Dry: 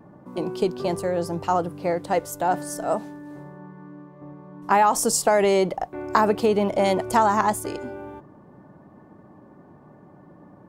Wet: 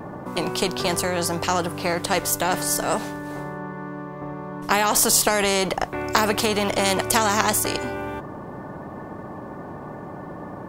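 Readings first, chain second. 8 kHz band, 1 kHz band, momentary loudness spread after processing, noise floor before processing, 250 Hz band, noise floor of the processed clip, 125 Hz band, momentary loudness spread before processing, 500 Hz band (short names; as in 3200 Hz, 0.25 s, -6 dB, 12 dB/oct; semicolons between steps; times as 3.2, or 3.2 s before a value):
+7.5 dB, -1.5 dB, 17 LU, -50 dBFS, +0.5 dB, -37 dBFS, +3.0 dB, 20 LU, -2.0 dB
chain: spectral compressor 2:1; gain +3 dB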